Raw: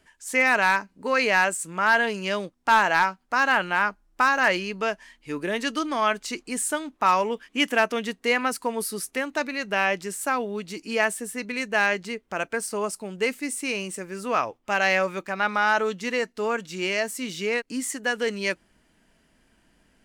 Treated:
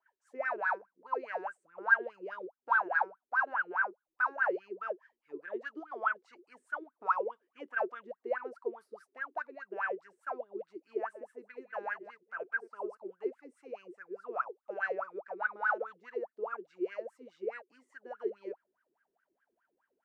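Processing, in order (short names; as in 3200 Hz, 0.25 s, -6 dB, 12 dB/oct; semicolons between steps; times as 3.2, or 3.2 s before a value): 10.99–13 reverse delay 0.124 s, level -11 dB; wah 4.8 Hz 350–1600 Hz, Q 21; gain +2.5 dB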